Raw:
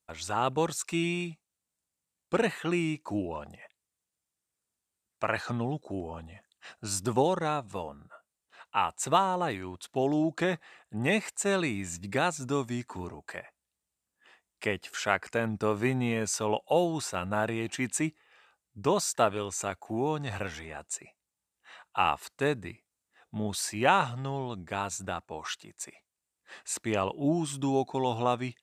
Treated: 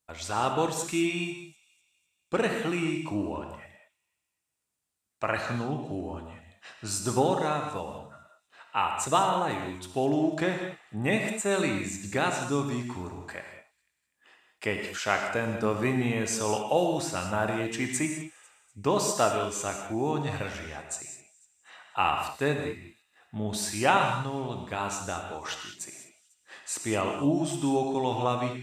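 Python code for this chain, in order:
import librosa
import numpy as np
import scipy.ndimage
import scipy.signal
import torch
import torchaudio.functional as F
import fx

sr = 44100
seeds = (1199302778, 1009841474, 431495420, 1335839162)

y = fx.peak_eq(x, sr, hz=5000.0, db=-7.5, octaves=0.75, at=(10.47, 11.51))
y = fx.echo_wet_highpass(y, sr, ms=248, feedback_pct=47, hz=3600.0, wet_db=-19)
y = fx.rev_gated(y, sr, seeds[0], gate_ms=230, shape='flat', drr_db=3.0)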